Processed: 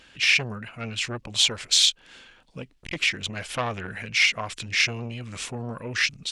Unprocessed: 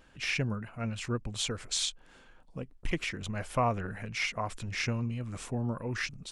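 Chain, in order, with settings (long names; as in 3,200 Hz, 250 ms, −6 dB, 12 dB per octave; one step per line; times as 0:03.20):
meter weighting curve D
gain on a spectral selection 0:01.23–0:01.61, 530–1,100 Hz +7 dB
low-shelf EQ 86 Hz +11.5 dB
saturating transformer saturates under 2,100 Hz
level +3.5 dB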